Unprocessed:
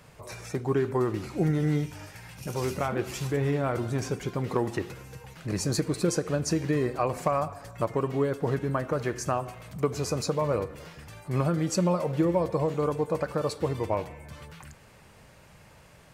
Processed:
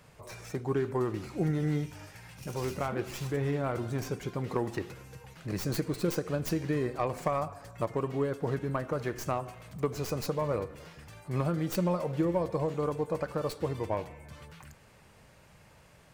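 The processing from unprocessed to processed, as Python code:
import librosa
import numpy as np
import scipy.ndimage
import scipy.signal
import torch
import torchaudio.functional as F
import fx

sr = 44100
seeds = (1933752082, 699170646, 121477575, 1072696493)

y = fx.tracing_dist(x, sr, depth_ms=0.19)
y = y * 10.0 ** (-4.0 / 20.0)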